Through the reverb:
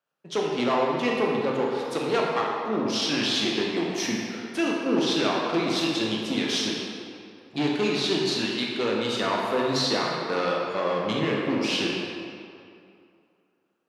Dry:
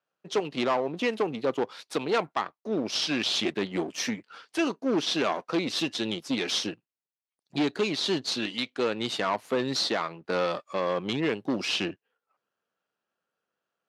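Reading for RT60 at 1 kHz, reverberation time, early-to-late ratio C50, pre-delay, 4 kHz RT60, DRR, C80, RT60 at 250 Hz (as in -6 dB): 2.5 s, 2.5 s, -0.5 dB, 16 ms, 1.6 s, -2.5 dB, 1.0 dB, 2.3 s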